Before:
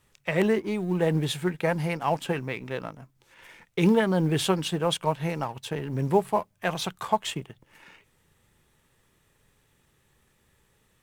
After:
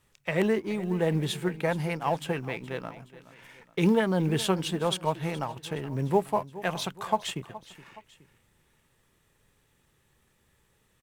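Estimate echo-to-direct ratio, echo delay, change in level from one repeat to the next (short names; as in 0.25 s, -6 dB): -16.0 dB, 0.42 s, -6.5 dB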